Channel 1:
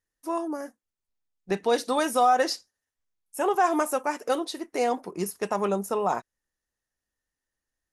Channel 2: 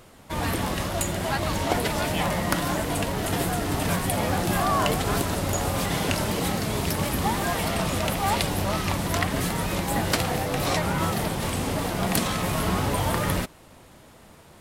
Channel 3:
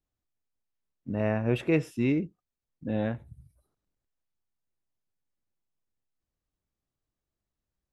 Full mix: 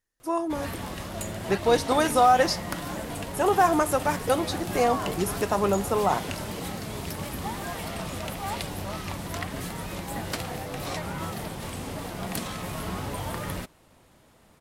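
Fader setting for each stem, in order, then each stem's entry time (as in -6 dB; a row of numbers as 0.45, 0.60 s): +2.0, -8.0, -12.5 dB; 0.00, 0.20, 0.00 s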